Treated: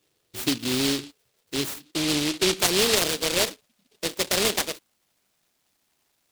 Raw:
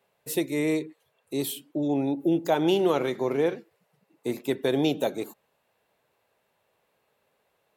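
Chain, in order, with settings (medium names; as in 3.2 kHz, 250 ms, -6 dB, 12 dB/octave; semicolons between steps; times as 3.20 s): gliding tape speed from 75% -> 171%; delay time shaken by noise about 3.5 kHz, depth 0.34 ms; trim +1 dB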